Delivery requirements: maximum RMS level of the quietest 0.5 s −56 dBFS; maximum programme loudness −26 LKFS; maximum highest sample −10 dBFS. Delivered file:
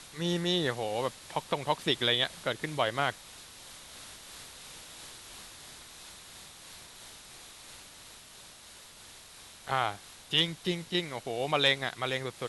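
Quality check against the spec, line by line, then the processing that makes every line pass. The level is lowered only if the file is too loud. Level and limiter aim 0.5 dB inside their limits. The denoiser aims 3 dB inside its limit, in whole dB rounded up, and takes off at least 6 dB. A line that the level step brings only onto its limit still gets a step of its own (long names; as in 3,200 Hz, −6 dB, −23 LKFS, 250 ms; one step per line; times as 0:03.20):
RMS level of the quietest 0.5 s −52 dBFS: out of spec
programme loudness −30.0 LKFS: in spec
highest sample −11.0 dBFS: in spec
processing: broadband denoise 7 dB, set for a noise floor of −52 dBFS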